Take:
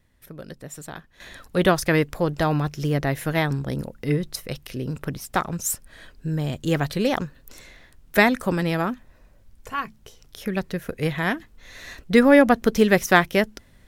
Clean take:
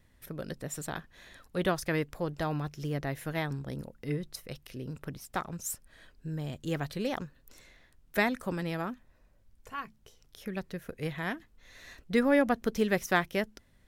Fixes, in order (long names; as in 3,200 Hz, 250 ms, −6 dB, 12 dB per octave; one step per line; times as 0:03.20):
level 0 dB, from 0:01.20 −10.5 dB